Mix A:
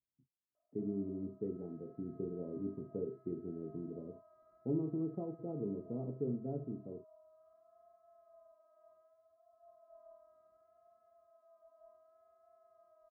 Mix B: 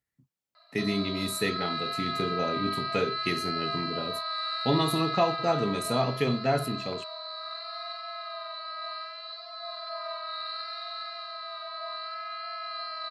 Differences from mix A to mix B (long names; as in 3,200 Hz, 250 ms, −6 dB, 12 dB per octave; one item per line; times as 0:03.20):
speech +4.0 dB
master: remove transistor ladder low-pass 450 Hz, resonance 40%